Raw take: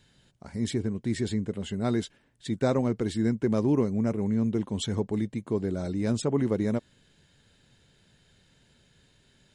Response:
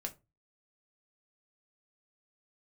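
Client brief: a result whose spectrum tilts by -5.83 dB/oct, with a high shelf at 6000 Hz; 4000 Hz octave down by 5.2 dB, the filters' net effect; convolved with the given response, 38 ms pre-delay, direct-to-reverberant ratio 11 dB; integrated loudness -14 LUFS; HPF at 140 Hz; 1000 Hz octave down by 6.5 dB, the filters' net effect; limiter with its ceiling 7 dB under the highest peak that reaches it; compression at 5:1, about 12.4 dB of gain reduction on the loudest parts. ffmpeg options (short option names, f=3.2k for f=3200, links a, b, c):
-filter_complex "[0:a]highpass=140,equalizer=f=1k:t=o:g=-9,equalizer=f=4k:t=o:g=-7,highshelf=f=6k:g=3,acompressor=threshold=-36dB:ratio=5,alimiter=level_in=8dB:limit=-24dB:level=0:latency=1,volume=-8dB,asplit=2[a][b];[1:a]atrim=start_sample=2205,adelay=38[c];[b][c]afir=irnorm=-1:irlink=0,volume=-9.5dB[d];[a][d]amix=inputs=2:normalize=0,volume=28dB"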